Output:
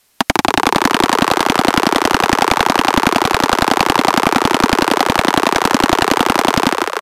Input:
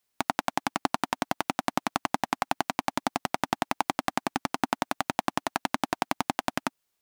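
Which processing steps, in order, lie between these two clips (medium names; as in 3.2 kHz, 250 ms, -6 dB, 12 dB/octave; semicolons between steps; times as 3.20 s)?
tracing distortion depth 0.063 ms; on a send: frequency-shifting echo 150 ms, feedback 62%, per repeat +85 Hz, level -9.5 dB; on the sum: sine folder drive 16 dB, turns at -4.5 dBFS; resampled via 32 kHz; trim +2.5 dB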